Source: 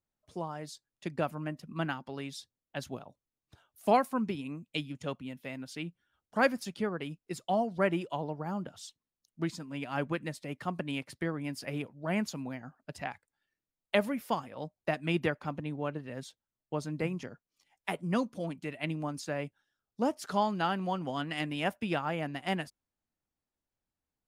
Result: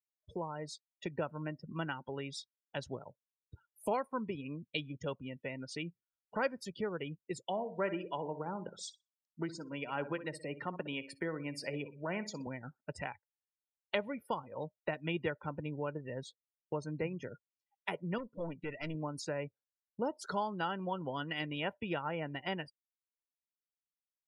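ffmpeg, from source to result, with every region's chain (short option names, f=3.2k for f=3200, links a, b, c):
-filter_complex "[0:a]asettb=1/sr,asplit=3[a][b][c];[a]atrim=end=7.464[d];[b]atrim=start=7.46:end=12.47,asetpts=PTS-STARTPTS,afade=t=in:d=0.004:c=qsin,afade=t=out:st=5.006:d=0.004:c=qsin,highpass=170,aecho=1:1:62|124|186|248:0.237|0.0949|0.0379|0.0152,atrim=end_sample=220941[e];[c]atrim=start=12.466[f];[d][e]acrossfade=d=0.004:c1=hsin:c2=qsin[g];[g][f]acrossfade=d=0.004:c1=qsin:c2=hsin,asettb=1/sr,asplit=3[h][i][j];[h]atrim=end=18.184[k];[i]atrim=start=18.18:end=18.95,asetpts=PTS-STARTPTS,afade=t=in:d=0.004:c=qsin,afade=t=out:st=0.766:d=0.004:c=qsin,lowpass=3.3k,aemphasis=mode=production:type=50fm,aeval=exprs='(tanh(39.8*val(0)+0.3)-tanh(0.3))/39.8':c=same[l];[j]atrim=start=18.946[m];[k][l]acrossfade=d=0.004:c1=hsin:c2=qsin[n];[n][m]acrossfade=d=0.004:c1=qsin:c2=hsin,acompressor=threshold=-47dB:ratio=2,aecho=1:1:2.1:0.38,afftdn=nr=35:nf=-53,volume=5.5dB"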